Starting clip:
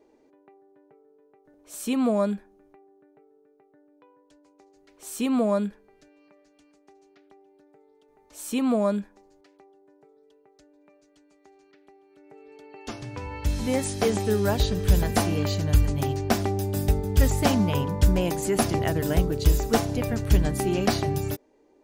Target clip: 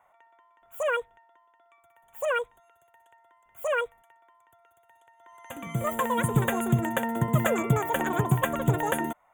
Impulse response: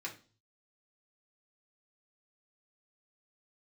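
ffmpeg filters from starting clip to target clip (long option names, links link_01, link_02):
-af "asetrate=103194,aresample=44100,asuperstop=centerf=4800:order=12:qfactor=1.7,volume=-3dB"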